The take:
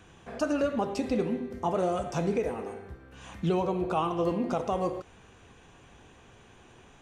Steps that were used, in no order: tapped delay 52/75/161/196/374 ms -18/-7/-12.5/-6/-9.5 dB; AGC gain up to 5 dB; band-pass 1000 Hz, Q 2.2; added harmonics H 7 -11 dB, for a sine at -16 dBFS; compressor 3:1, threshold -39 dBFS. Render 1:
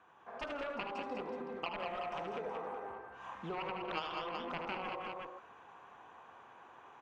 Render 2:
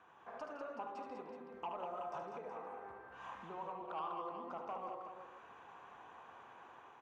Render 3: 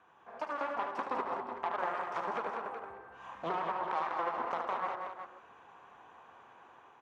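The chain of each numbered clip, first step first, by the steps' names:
band-pass > added harmonics > tapped delay > AGC > compressor; AGC > compressor > band-pass > added harmonics > tapped delay; added harmonics > band-pass > compressor > AGC > tapped delay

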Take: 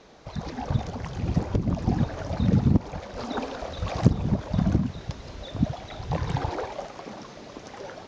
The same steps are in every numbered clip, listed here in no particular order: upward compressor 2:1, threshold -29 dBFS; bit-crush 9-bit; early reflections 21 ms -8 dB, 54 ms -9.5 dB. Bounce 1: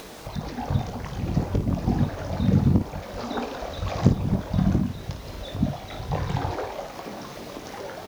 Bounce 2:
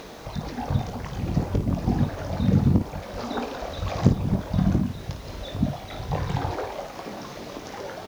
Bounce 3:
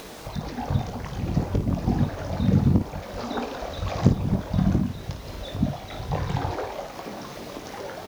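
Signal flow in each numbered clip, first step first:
bit-crush > early reflections > upward compressor; upward compressor > bit-crush > early reflections; bit-crush > upward compressor > early reflections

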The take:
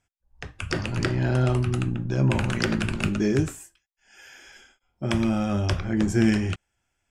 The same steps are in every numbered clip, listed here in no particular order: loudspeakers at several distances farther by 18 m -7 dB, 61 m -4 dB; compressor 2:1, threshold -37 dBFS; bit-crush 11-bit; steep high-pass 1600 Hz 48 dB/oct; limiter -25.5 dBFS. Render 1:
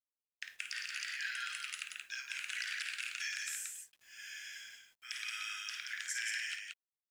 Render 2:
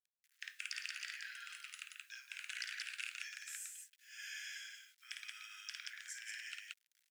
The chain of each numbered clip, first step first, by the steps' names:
steep high-pass > limiter > compressor > bit-crush > loudspeakers at several distances; compressor > loudspeakers at several distances > limiter > bit-crush > steep high-pass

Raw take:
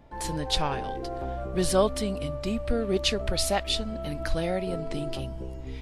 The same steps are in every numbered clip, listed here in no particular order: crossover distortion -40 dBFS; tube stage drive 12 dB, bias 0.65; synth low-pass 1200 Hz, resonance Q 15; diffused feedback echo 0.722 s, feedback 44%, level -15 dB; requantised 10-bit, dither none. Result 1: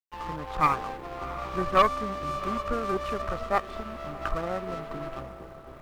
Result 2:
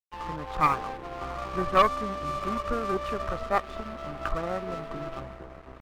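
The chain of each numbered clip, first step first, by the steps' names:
synth low-pass > requantised > tube stage > crossover distortion > diffused feedback echo; requantised > synth low-pass > tube stage > diffused feedback echo > crossover distortion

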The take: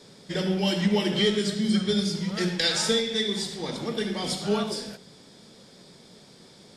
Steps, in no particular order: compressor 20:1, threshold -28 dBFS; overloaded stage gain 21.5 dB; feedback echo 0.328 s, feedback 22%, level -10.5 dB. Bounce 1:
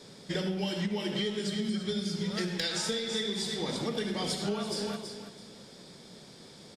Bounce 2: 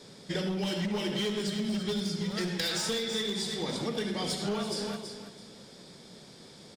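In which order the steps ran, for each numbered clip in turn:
feedback echo > compressor > overloaded stage; overloaded stage > feedback echo > compressor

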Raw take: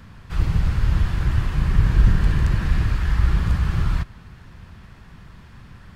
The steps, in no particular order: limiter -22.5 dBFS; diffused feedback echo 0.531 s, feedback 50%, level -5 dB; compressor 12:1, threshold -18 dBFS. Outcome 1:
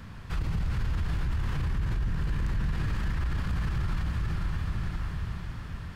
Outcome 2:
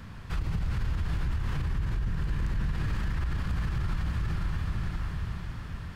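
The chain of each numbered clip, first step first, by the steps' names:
diffused feedback echo > limiter > compressor; diffused feedback echo > compressor > limiter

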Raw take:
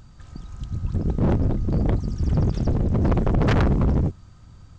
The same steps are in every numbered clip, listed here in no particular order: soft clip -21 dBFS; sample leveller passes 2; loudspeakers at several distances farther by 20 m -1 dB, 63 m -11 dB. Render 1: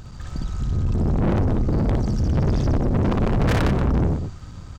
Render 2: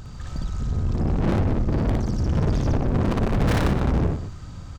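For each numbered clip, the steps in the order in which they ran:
soft clip > loudspeakers at several distances > sample leveller; soft clip > sample leveller > loudspeakers at several distances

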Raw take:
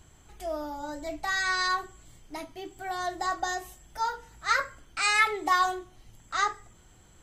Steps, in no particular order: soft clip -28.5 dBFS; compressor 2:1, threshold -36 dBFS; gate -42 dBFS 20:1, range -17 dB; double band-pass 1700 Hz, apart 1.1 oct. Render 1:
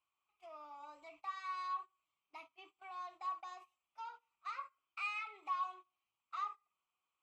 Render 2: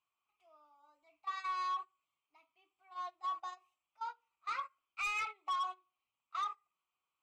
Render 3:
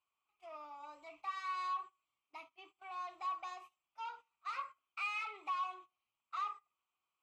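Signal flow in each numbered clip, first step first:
compressor > soft clip > gate > double band-pass; double band-pass > soft clip > compressor > gate; soft clip > gate > double band-pass > compressor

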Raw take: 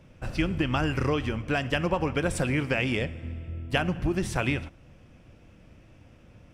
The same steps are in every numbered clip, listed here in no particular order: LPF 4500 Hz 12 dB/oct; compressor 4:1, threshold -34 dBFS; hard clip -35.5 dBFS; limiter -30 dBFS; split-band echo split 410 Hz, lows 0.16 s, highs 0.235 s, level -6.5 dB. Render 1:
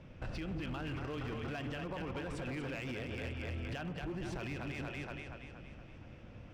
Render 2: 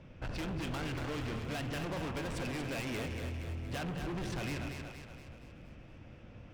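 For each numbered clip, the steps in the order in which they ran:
split-band echo > compressor > limiter > LPF > hard clip; LPF > hard clip > limiter > split-band echo > compressor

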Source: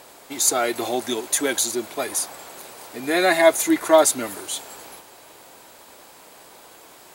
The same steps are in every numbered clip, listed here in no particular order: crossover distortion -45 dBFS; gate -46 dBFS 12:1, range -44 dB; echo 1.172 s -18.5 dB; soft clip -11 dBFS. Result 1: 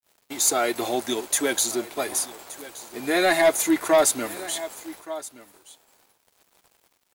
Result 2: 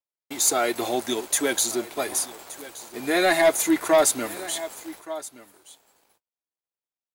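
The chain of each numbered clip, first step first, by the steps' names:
gate > crossover distortion > echo > soft clip; crossover distortion > gate > echo > soft clip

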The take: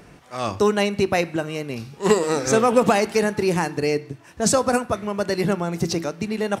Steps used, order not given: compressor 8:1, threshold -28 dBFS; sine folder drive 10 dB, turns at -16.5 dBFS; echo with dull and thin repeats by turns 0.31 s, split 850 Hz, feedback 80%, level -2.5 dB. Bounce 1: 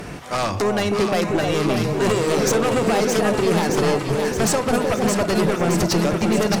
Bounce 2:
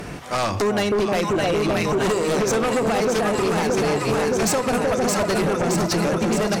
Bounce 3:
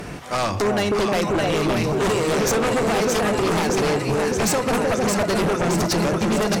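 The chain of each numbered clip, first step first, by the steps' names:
compressor > sine folder > echo with dull and thin repeats by turns; echo with dull and thin repeats by turns > compressor > sine folder; compressor > echo with dull and thin repeats by turns > sine folder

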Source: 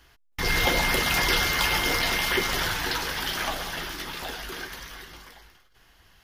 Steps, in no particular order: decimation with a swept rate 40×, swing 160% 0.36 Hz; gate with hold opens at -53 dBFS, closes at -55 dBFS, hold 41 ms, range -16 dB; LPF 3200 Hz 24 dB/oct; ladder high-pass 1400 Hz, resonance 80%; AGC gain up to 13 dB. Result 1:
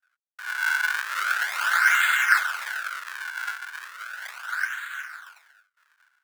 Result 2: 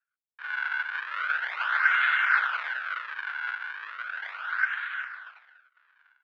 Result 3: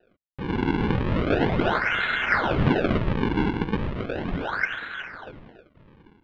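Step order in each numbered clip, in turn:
LPF > decimation with a swept rate > gate with hold > ladder high-pass > AGC; AGC > decimation with a swept rate > ladder high-pass > gate with hold > LPF; gate with hold > AGC > ladder high-pass > decimation with a swept rate > LPF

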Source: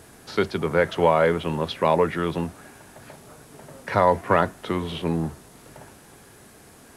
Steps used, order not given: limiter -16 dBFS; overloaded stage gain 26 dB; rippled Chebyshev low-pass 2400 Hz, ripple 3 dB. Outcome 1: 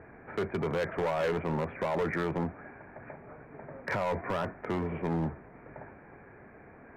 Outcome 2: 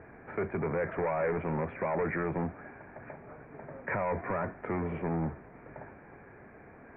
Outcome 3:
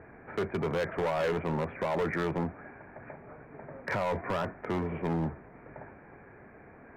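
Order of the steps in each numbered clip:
limiter > rippled Chebyshev low-pass > overloaded stage; limiter > overloaded stage > rippled Chebyshev low-pass; rippled Chebyshev low-pass > limiter > overloaded stage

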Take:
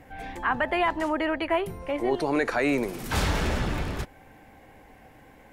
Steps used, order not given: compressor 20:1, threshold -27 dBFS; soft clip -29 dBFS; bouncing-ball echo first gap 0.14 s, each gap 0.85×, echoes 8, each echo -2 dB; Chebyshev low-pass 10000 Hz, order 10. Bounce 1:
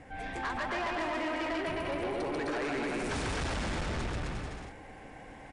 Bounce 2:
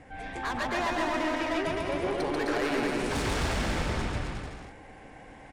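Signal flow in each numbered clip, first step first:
compressor > bouncing-ball echo > soft clip > Chebyshev low-pass; Chebyshev low-pass > soft clip > compressor > bouncing-ball echo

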